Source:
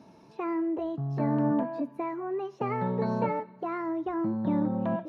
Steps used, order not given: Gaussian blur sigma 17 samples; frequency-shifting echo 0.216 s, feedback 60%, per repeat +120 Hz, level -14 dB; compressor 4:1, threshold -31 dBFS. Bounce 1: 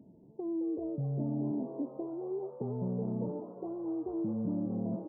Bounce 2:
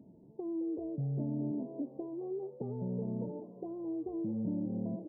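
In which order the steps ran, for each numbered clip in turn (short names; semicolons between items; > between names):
Gaussian blur > compressor > frequency-shifting echo; compressor > frequency-shifting echo > Gaussian blur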